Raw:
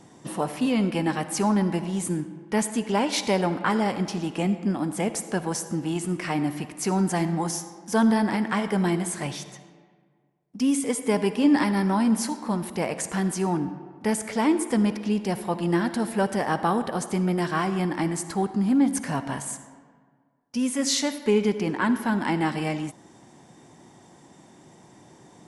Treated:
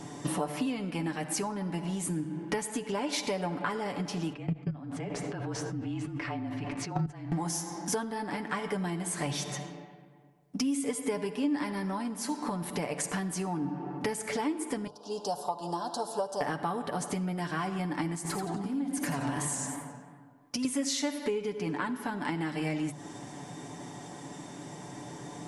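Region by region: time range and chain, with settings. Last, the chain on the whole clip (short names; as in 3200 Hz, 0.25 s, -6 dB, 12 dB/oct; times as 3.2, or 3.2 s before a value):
4.33–7.32 LPF 3600 Hz + level quantiser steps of 22 dB + frequency shift -34 Hz
14.87–16.41 Butterworth band-stop 2100 Hz, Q 0.58 + three-band isolator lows -21 dB, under 580 Hz, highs -13 dB, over 6700 Hz
18.15–20.65 compressor, threshold -33 dBFS + warbling echo 90 ms, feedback 41%, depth 195 cents, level -5 dB
whole clip: compressor 12:1, threshold -37 dBFS; notches 50/100/150 Hz; comb 6.9 ms, depth 55%; gain +7 dB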